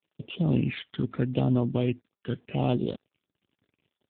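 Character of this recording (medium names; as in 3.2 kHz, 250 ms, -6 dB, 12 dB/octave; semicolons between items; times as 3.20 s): a buzz of ramps at a fixed pitch in blocks of 8 samples; phasing stages 12, 0.79 Hz, lowest notch 740–2000 Hz; a quantiser's noise floor 10-bit, dither none; AMR-NB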